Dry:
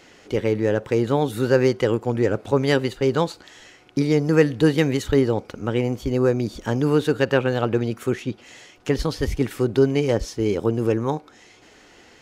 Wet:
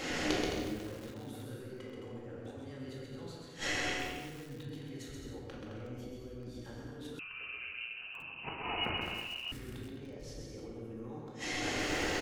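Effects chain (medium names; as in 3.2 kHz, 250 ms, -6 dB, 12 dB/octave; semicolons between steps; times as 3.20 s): peak limiter -12.5 dBFS, peak gain reduction 7.5 dB; compressor with a negative ratio -28 dBFS, ratio -1; inverted gate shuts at -28 dBFS, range -29 dB; bouncing-ball echo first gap 130 ms, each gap 0.65×, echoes 5; simulated room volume 650 m³, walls mixed, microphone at 2.2 m; 7.19–9.52 s: frequency inversion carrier 2.9 kHz; bit-crushed delay 365 ms, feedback 55%, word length 7-bit, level -14 dB; trim +3.5 dB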